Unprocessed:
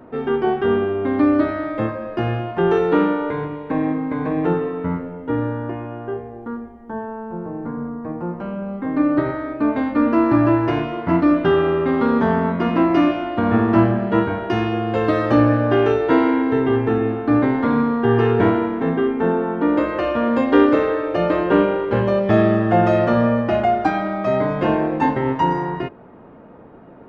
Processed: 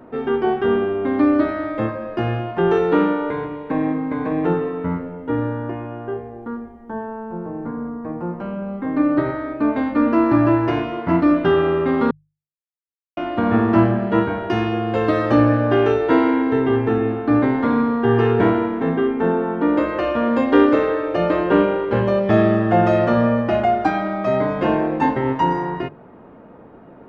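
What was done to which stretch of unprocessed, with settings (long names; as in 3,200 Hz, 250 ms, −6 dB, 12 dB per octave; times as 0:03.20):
0:12.11–0:13.17: silence
whole clip: mains-hum notches 50/100/150 Hz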